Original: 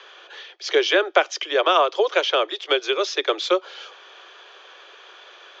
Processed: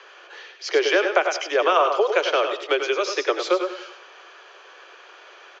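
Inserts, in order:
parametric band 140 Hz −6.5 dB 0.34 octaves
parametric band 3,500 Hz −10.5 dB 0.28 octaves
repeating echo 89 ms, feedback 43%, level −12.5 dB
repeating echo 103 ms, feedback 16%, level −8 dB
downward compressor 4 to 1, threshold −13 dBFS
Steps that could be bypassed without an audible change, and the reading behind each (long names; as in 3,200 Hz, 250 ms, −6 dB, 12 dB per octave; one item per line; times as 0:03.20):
parametric band 140 Hz: nothing at its input below 270 Hz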